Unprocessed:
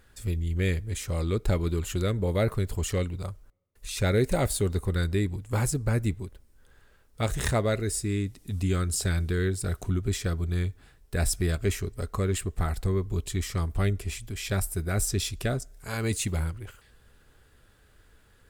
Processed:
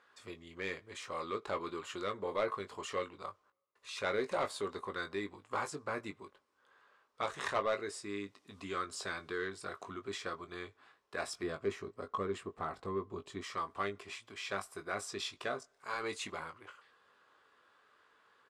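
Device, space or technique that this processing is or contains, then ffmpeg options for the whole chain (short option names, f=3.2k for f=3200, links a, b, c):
intercom: -filter_complex "[0:a]highpass=430,lowpass=4.5k,equalizer=f=1.1k:t=o:w=0.45:g=12,asoftclip=type=tanh:threshold=-19dB,asplit=2[a][b];[b]adelay=20,volume=-8dB[c];[a][c]amix=inputs=2:normalize=0,asettb=1/sr,asplit=3[d][e][f];[d]atrim=end=11.434[g];[e]atrim=start=11.43:end=13.44,asetpts=PTS-STARTPTS,afade=t=in:d=0.004:c=qsin,afade=t=out:st=2.006:d=0.004:c=qsin,tiltshelf=f=660:g=6.5[h];[f]atrim=start=13.436[i];[g][h]acrossfade=d=0.004:c1=hsin:c2=qsin[j];[j][i]acrossfade=d=0.004:c1=qsin:c2=hsin,volume=-5.5dB"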